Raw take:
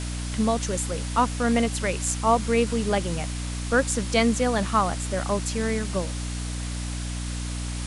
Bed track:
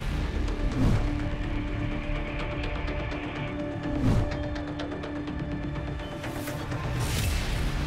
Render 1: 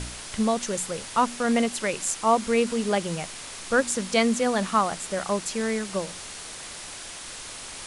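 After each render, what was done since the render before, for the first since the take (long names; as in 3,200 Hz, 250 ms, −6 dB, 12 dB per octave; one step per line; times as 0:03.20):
hum removal 60 Hz, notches 5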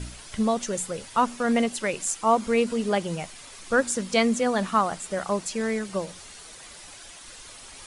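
broadband denoise 9 dB, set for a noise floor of −39 dBFS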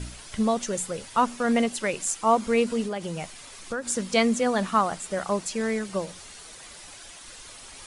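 0:02.83–0:03.88: downward compressor, threshold −27 dBFS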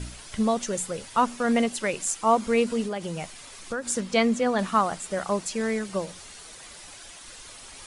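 0:04.00–0:04.59: high-shelf EQ 7,300 Hz −11 dB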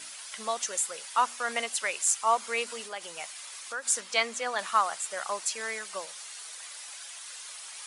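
high-pass filter 920 Hz 12 dB per octave
high-shelf EQ 6,400 Hz +4.5 dB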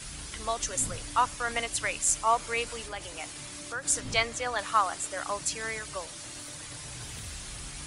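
mix in bed track −16 dB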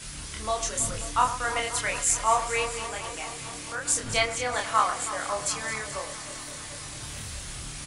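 double-tracking delay 28 ms −2.5 dB
delay that swaps between a low-pass and a high-pass 107 ms, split 2,000 Hz, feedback 87%, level −11.5 dB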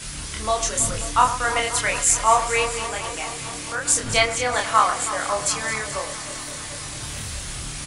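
level +6 dB
brickwall limiter −3 dBFS, peak gain reduction 1 dB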